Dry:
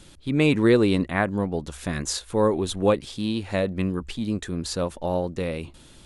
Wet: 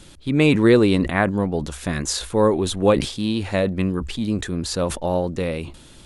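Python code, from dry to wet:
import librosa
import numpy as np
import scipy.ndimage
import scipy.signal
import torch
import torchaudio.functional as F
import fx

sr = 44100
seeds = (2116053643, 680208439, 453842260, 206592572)

y = fx.sustainer(x, sr, db_per_s=100.0)
y = y * 10.0 ** (3.5 / 20.0)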